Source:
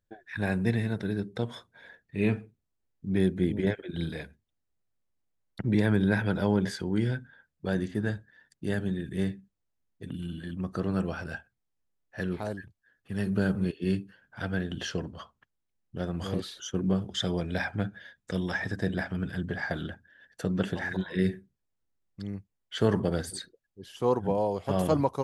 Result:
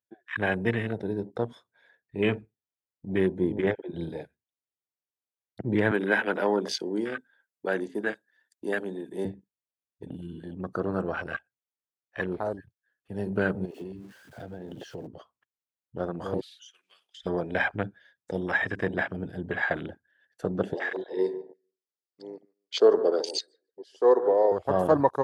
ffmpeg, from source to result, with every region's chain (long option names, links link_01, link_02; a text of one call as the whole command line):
ffmpeg -i in.wav -filter_complex "[0:a]asettb=1/sr,asplit=3[link_01][link_02][link_03];[link_01]atrim=end=5.914[link_04];[link_02]atrim=start=5.91:end=9.25,asetpts=PTS-STARTPTS,afade=type=in:duration=0.004:curve=qsin,afade=type=out:start_time=3.336:duration=0.004:curve=qsin,highpass=frequency=220:width=0.5412,highpass=frequency=220:width=1.3066,aemphasis=mode=production:type=cd[link_05];[link_03]atrim=start=9.246[link_06];[link_04][link_05]acrossfade=duration=0.004:curve1=hsin:curve2=qsin[link_07];[link_07][link_06]acrossfade=duration=0.004:curve1=qsin:curve2=hsin,asettb=1/sr,asplit=3[link_08][link_09][link_10];[link_08]atrim=end=13.654[link_11];[link_09]atrim=start=13.65:end=15.07,asetpts=PTS-STARTPTS,afade=type=in:duration=0.004:curve=qsin,afade=type=out:start_time=1.416:duration=0.004:curve=qsin,aeval=exprs='val(0)+0.5*0.00944*sgn(val(0))':channel_layout=same,acompressor=threshold=-34dB:ratio=12:attack=3.2:release=140:knee=1:detection=peak[link_12];[link_10]atrim=start=15.066[link_13];[link_11][link_12]acrossfade=duration=0.004:curve1=hsin:curve2=qsin[link_14];[link_14][link_13]acrossfade=duration=0.004:curve1=qsin:curve2=hsin,asettb=1/sr,asplit=3[link_15][link_16][link_17];[link_15]atrim=end=16.414[link_18];[link_16]atrim=start=16.41:end=17.26,asetpts=PTS-STARTPTS,afade=type=in:duration=0.004:curve=qsin,afade=type=out:start_time=0.846:duration=0.004:curve=qsin,highpass=frequency=2600:width_type=q:width=2.1,acompressor=threshold=-36dB:ratio=5:attack=3.2:release=140:knee=1:detection=peak[link_19];[link_17]atrim=start=17.256[link_20];[link_18][link_19]acrossfade=duration=0.004:curve1=hsin:curve2=qsin[link_21];[link_21][link_20]acrossfade=duration=0.004:curve1=qsin:curve2=hsin,asettb=1/sr,asplit=3[link_22][link_23][link_24];[link_22]atrim=end=20.744[link_25];[link_23]atrim=start=20.74:end=24.52,asetpts=PTS-STARTPTS,afade=type=in:duration=0.004:curve=qsin,afade=type=out:start_time=3.776:duration=0.004:curve=qsin,highpass=frequency=310:width=0.5412,highpass=frequency=310:width=1.3066,equalizer=frequency=430:width_type=q:width=4:gain=6,equalizer=frequency=890:width_type=q:width=4:gain=-5,equalizer=frequency=1500:width_type=q:width=4:gain=-6,equalizer=frequency=2500:width_type=q:width=4:gain=-5,equalizer=frequency=4800:width_type=q:width=4:gain=9,lowpass=frequency=9300:width=0.5412,lowpass=frequency=9300:width=1.3066,asplit=2[link_26][link_27];[link_27]adelay=146,lowpass=frequency=950:poles=1,volume=-12dB,asplit=2[link_28][link_29];[link_29]adelay=146,lowpass=frequency=950:poles=1,volume=0.24,asplit=2[link_30][link_31];[link_31]adelay=146,lowpass=frequency=950:poles=1,volume=0.24[link_32];[link_26][link_28][link_30][link_32]amix=inputs=4:normalize=0,atrim=end_sample=166698[link_33];[link_24]atrim=start=24.516[link_34];[link_25][link_33]acrossfade=duration=0.004:curve1=hsin:curve2=qsin[link_35];[link_35][link_34]acrossfade=duration=0.004:curve1=qsin:curve2=hsin,highpass=150,afwtdn=0.0126,equalizer=frequency=190:width_type=o:width=1.3:gain=-9,volume=6.5dB" out.wav